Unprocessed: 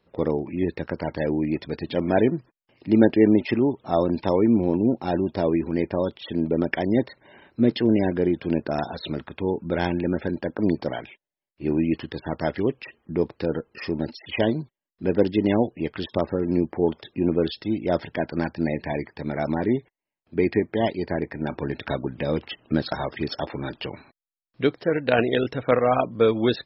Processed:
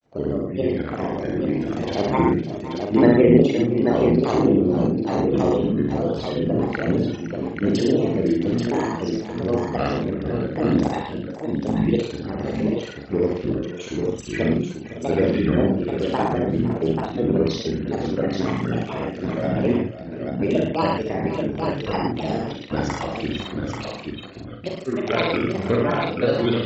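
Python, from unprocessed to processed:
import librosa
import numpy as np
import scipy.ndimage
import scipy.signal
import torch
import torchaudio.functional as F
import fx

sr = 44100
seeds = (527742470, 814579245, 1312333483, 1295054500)

p1 = fx.granulator(x, sr, seeds[0], grain_ms=100.0, per_s=20.0, spray_ms=36.0, spread_st=7)
p2 = fx.rotary(p1, sr, hz=0.9)
p3 = fx.doubler(p2, sr, ms=42.0, db=-5)
p4 = p3 + fx.echo_multitap(p3, sr, ms=(67, 110, 511, 556, 835, 895), db=(-4.0, -5.0, -15.5, -14.0, -5.0, -13.5), dry=0)
y = F.gain(torch.from_numpy(p4), 1.0).numpy()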